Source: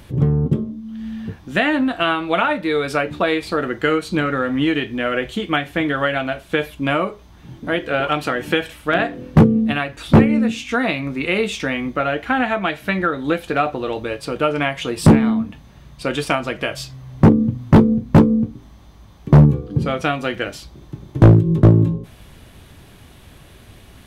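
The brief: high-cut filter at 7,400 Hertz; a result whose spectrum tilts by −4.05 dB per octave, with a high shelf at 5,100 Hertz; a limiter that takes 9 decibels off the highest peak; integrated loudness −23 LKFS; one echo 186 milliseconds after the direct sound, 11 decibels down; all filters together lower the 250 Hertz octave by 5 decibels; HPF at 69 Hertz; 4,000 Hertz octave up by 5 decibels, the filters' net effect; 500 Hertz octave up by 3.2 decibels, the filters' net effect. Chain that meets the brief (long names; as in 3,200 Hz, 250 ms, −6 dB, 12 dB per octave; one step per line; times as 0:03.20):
high-pass filter 69 Hz
low-pass filter 7,400 Hz
parametric band 250 Hz −8.5 dB
parametric band 500 Hz +6 dB
parametric band 4,000 Hz +4.5 dB
high-shelf EQ 5,100 Hz +6.5 dB
brickwall limiter −5.5 dBFS
single-tap delay 186 ms −11 dB
level −3 dB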